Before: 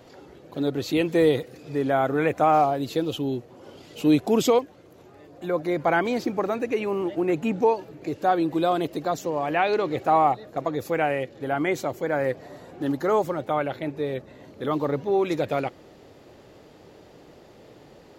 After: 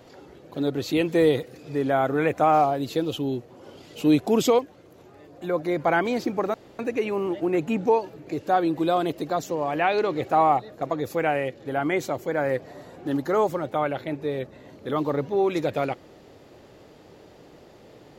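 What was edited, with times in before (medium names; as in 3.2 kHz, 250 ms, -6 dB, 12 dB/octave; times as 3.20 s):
6.54 s: insert room tone 0.25 s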